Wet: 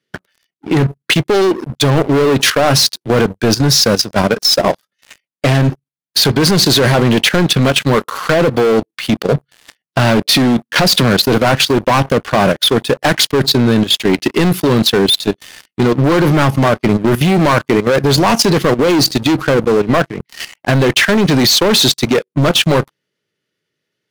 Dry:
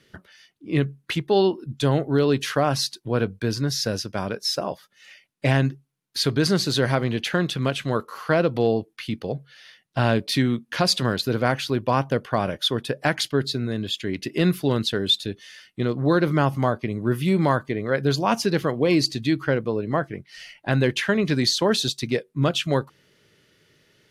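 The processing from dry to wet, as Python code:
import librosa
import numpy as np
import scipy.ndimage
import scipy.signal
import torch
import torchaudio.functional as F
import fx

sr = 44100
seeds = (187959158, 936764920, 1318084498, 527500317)

y = scipy.signal.sosfilt(scipy.signal.butter(2, 130.0, 'highpass', fs=sr, output='sos'), x)
y = fx.leveller(y, sr, passes=5)
y = fx.level_steps(y, sr, step_db=13)
y = F.gain(torch.from_numpy(y), 2.5).numpy()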